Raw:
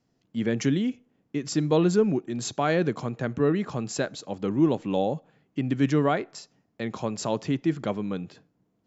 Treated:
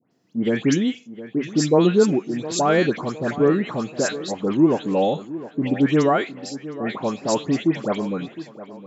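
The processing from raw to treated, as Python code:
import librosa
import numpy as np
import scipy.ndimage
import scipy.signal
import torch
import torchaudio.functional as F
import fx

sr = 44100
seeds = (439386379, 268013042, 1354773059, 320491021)

y = scipy.signal.sosfilt(scipy.signal.butter(2, 170.0, 'highpass', fs=sr, output='sos'), x)
y = fx.dispersion(y, sr, late='highs', ms=120.0, hz=2100.0)
y = fx.echo_tape(y, sr, ms=712, feedback_pct=45, wet_db=-14.0, lp_hz=2200.0, drive_db=8.0, wow_cents=9)
y = y * 10.0 ** (6.0 / 20.0)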